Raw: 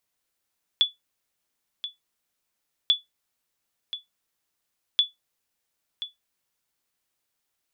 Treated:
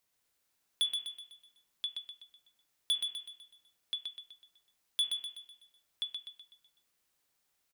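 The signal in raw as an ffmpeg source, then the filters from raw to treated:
-f lavfi -i "aevalsrc='0.282*(sin(2*PI*3440*mod(t,2.09))*exp(-6.91*mod(t,2.09)/0.16)+0.224*sin(2*PI*3440*max(mod(t,2.09)-1.03,0))*exp(-6.91*max(mod(t,2.09)-1.03,0)/0.16))':d=6.27:s=44100"
-filter_complex "[0:a]bandreject=f=117.3:t=h:w=4,bandreject=f=234.6:t=h:w=4,bandreject=f=351.9:t=h:w=4,bandreject=f=469.2:t=h:w=4,bandreject=f=586.5:t=h:w=4,bandreject=f=703.8:t=h:w=4,bandreject=f=821.1:t=h:w=4,bandreject=f=938.4:t=h:w=4,bandreject=f=1.0557k:t=h:w=4,bandreject=f=1.173k:t=h:w=4,bandreject=f=1.2903k:t=h:w=4,bandreject=f=1.4076k:t=h:w=4,bandreject=f=1.5249k:t=h:w=4,bandreject=f=1.6422k:t=h:w=4,bandreject=f=1.7595k:t=h:w=4,bandreject=f=1.8768k:t=h:w=4,bandreject=f=1.9941k:t=h:w=4,bandreject=f=2.1114k:t=h:w=4,bandreject=f=2.2287k:t=h:w=4,bandreject=f=2.346k:t=h:w=4,bandreject=f=2.4633k:t=h:w=4,bandreject=f=2.5806k:t=h:w=4,bandreject=f=2.6979k:t=h:w=4,bandreject=f=2.8152k:t=h:w=4,bandreject=f=2.9325k:t=h:w=4,bandreject=f=3.0498k:t=h:w=4,bandreject=f=3.1671k:t=h:w=4,bandreject=f=3.2844k:t=h:w=4,bandreject=f=3.4017k:t=h:w=4,asoftclip=type=tanh:threshold=-26dB,asplit=2[a][b];[b]aecho=0:1:125|250|375|500|625|750:0.562|0.259|0.119|0.0547|0.0252|0.0116[c];[a][c]amix=inputs=2:normalize=0"

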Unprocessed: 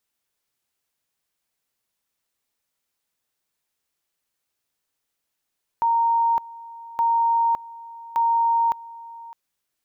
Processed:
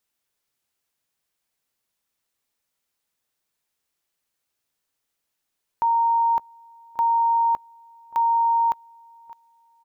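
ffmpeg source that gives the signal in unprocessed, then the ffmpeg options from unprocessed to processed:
-f lavfi -i "aevalsrc='pow(10,(-16.5-20*gte(mod(t,1.17),0.56))/20)*sin(2*PI*926*t)':d=3.51:s=44100"
-filter_complex "[0:a]asplit=2[a][b];[b]adelay=576,lowpass=f=800:p=1,volume=-20dB,asplit=2[c][d];[d]adelay=576,lowpass=f=800:p=1,volume=0.41,asplit=2[e][f];[f]adelay=576,lowpass=f=800:p=1,volume=0.41[g];[a][c][e][g]amix=inputs=4:normalize=0"

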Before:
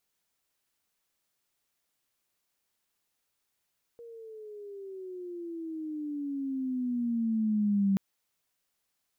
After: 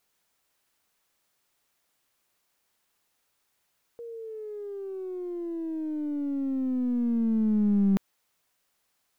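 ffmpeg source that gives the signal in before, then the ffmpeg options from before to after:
-f lavfi -i "aevalsrc='pow(10,(-22+22*(t/3.98-1))/20)*sin(2*PI*473*3.98/(-15.5*log(2)/12)*(exp(-15.5*log(2)/12*t/3.98)-1))':d=3.98:s=44100"
-filter_complex "[0:a]equalizer=f=960:t=o:w=2.7:g=3.5,asplit=2[a][b];[b]aeval=exprs='clip(val(0),-1,0.00891)':c=same,volume=-3dB[c];[a][c]amix=inputs=2:normalize=0"

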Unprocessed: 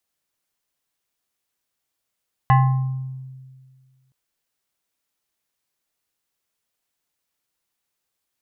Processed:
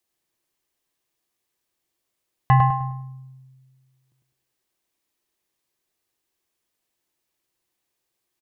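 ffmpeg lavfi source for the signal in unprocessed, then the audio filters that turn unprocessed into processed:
-f lavfi -i "aevalsrc='0.335*pow(10,-3*t/1.84)*sin(2*PI*131*t+1.1*pow(10,-3*t/1.04)*sin(2*PI*7.07*131*t))':d=1.62:s=44100"
-filter_complex "[0:a]equalizer=f=350:t=o:w=0.32:g=8.5,bandreject=f=1.4k:w=11,asplit=2[a][b];[b]adelay=102,lowpass=f=2.6k:p=1,volume=-3.5dB,asplit=2[c][d];[d]adelay=102,lowpass=f=2.6k:p=1,volume=0.39,asplit=2[e][f];[f]adelay=102,lowpass=f=2.6k:p=1,volume=0.39,asplit=2[g][h];[h]adelay=102,lowpass=f=2.6k:p=1,volume=0.39,asplit=2[i][j];[j]adelay=102,lowpass=f=2.6k:p=1,volume=0.39[k];[a][c][e][g][i][k]amix=inputs=6:normalize=0"

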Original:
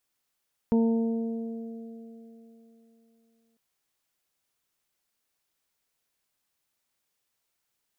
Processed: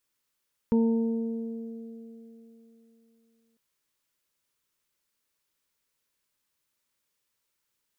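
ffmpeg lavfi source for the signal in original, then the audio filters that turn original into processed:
-f lavfi -i "aevalsrc='0.112*pow(10,-3*t/3.33)*sin(2*PI*228*t)+0.0501*pow(10,-3*t/3.39)*sin(2*PI*456*t)+0.0119*pow(10,-3*t/3.62)*sin(2*PI*684*t)+0.0141*pow(10,-3*t/1.29)*sin(2*PI*912*t)':d=2.85:s=44100"
-af "asuperstop=centerf=730:order=4:qfactor=4.1"

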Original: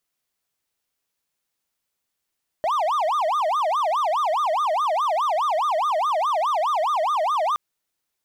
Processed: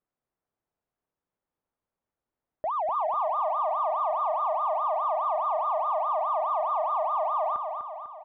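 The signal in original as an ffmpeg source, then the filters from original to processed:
-f lavfi -i "aevalsrc='0.141*(1-4*abs(mod((921*t-309/(2*PI*4.8)*sin(2*PI*4.8*t))+0.25,1)-0.5))':d=4.92:s=44100"
-af "lowpass=1k,alimiter=level_in=0.5dB:limit=-24dB:level=0:latency=1:release=165,volume=-0.5dB,aecho=1:1:249|498|747|996|1245|1494|1743:0.501|0.276|0.152|0.0834|0.0459|0.0252|0.0139"

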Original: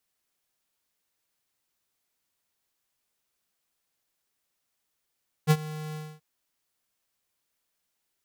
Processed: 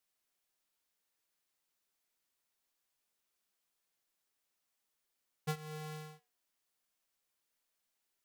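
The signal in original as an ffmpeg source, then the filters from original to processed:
-f lavfi -i "aevalsrc='0.141*(2*lt(mod(154*t,1),0.5)-1)':d=0.731:s=44100,afade=t=in:d=0.038,afade=t=out:st=0.038:d=0.052:silence=0.112,afade=t=out:st=0.48:d=0.251"
-af "equalizer=f=98:w=0.8:g=-6.5,acompressor=threshold=-31dB:ratio=4,flanger=delay=7.6:depth=3.8:regen=79:speed=0.38:shape=sinusoidal"

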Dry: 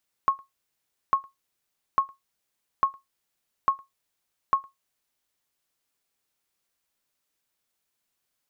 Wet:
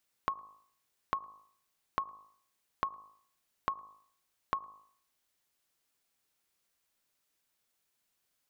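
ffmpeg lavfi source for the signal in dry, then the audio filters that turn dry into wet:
-f lavfi -i "aevalsrc='0.251*(sin(2*PI*1090*mod(t,0.85))*exp(-6.91*mod(t,0.85)/0.16)+0.0376*sin(2*PI*1090*max(mod(t,0.85)-0.11,0))*exp(-6.91*max(mod(t,0.85)-0.11,0)/0.16))':d=5.1:s=44100"
-af "bandreject=f=52.7:t=h:w=4,bandreject=f=105.4:t=h:w=4,bandreject=f=158.1:t=h:w=4,bandreject=f=210.8:t=h:w=4,bandreject=f=263.5:t=h:w=4,bandreject=f=316.2:t=h:w=4,bandreject=f=368.9:t=h:w=4,bandreject=f=421.6:t=h:w=4,bandreject=f=474.3:t=h:w=4,bandreject=f=527:t=h:w=4,bandreject=f=579.7:t=h:w=4,bandreject=f=632.4:t=h:w=4,bandreject=f=685.1:t=h:w=4,bandreject=f=737.8:t=h:w=4,bandreject=f=790.5:t=h:w=4,bandreject=f=843.2:t=h:w=4,bandreject=f=895.9:t=h:w=4,bandreject=f=948.6:t=h:w=4,bandreject=f=1.0013k:t=h:w=4,bandreject=f=1.054k:t=h:w=4,bandreject=f=1.1067k:t=h:w=4,bandreject=f=1.1594k:t=h:w=4,bandreject=f=1.2121k:t=h:w=4,bandreject=f=1.2648k:t=h:w=4,acompressor=threshold=-31dB:ratio=10"

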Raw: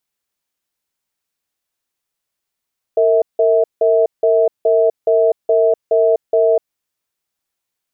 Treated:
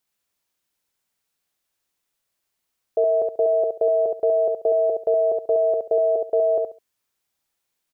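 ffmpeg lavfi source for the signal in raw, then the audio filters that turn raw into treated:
-f lavfi -i "aevalsrc='0.237*(sin(2*PI*457*t)+sin(2*PI*649*t))*clip(min(mod(t,0.42),0.25-mod(t,0.42))/0.005,0,1)':d=3.67:s=44100"
-af "alimiter=limit=-12dB:level=0:latency=1:release=10,aecho=1:1:69|138|207:0.631|0.133|0.0278"

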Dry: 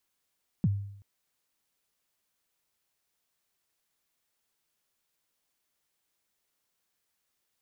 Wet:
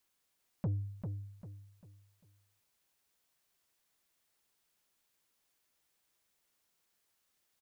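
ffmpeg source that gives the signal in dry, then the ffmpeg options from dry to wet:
-f lavfi -i "aevalsrc='0.106*pow(10,-3*t/0.72)*sin(2*PI*(220*0.037/log(100/220)*(exp(log(100/220)*min(t,0.037)/0.037)-1)+100*max(t-0.037,0)))':d=0.38:s=44100"
-af "asoftclip=type=tanh:threshold=-30dB,aecho=1:1:396|792|1188|1584:0.501|0.17|0.0579|0.0197"

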